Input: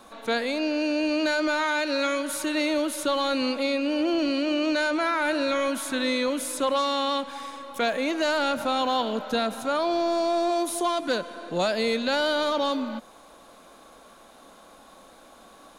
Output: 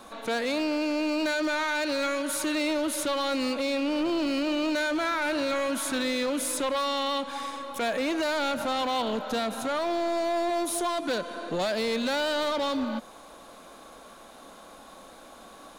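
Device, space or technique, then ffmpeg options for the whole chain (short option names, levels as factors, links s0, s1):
limiter into clipper: -af "alimiter=limit=0.0891:level=0:latency=1:release=175,asoftclip=type=hard:threshold=0.0473,volume=1.33"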